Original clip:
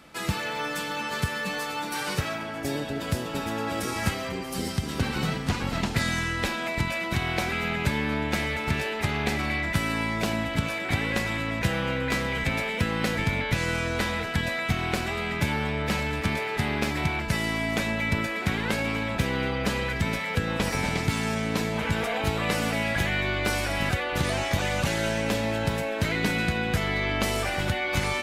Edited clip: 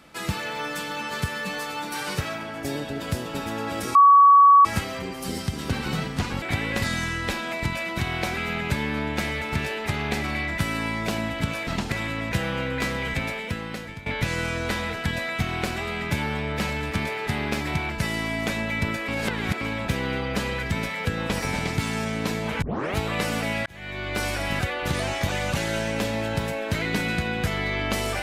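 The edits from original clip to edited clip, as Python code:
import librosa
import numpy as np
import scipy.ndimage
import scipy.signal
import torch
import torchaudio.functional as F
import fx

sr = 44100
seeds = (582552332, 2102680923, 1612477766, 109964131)

y = fx.edit(x, sr, fx.insert_tone(at_s=3.95, length_s=0.7, hz=1130.0, db=-9.5),
    fx.swap(start_s=5.72, length_s=0.25, other_s=10.82, other_length_s=0.4),
    fx.fade_out_to(start_s=12.4, length_s=0.96, floor_db=-16.5),
    fx.reverse_span(start_s=18.38, length_s=0.53),
    fx.tape_start(start_s=21.92, length_s=0.34),
    fx.fade_in_span(start_s=22.96, length_s=0.6), tone=tone)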